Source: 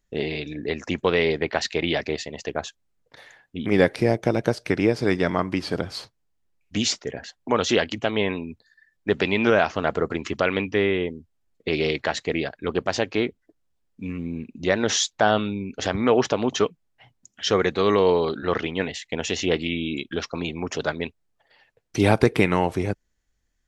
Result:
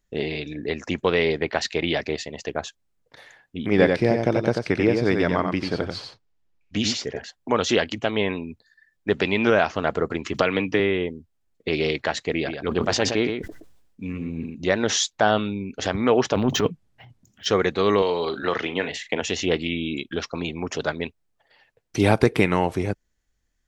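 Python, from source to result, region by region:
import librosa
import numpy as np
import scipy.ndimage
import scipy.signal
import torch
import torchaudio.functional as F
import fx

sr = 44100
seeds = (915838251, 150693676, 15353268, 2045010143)

y = fx.chain(x, sr, fx.lowpass(hz=5700.0, slope=12),
    fx.echo_single(ms=91, db=-5.0), at=(3.68, 7.22))
y = fx.chain(y, sr, fx.comb(ms=6.4, depth=0.3),
    fx.band_squash(depth_pct=100), at=(10.34, 10.8))
y = fx.chain(y, sr, fx.echo_single(ms=120, db=-9.0),
    fx.sustainer(db_per_s=59.0), at=(12.34, 14.55))
y = fx.chain(y, sr, fx.peak_eq(hz=110.0, db=11.0, octaves=2.8),
    fx.transient(attack_db=-11, sustain_db=6),
    fx.resample_linear(factor=2), at=(16.35, 17.46))
y = fx.chain(y, sr, fx.low_shelf(hz=330.0, db=-8.5),
    fx.doubler(ms=40.0, db=-12.0),
    fx.band_squash(depth_pct=100), at=(18.02, 19.22))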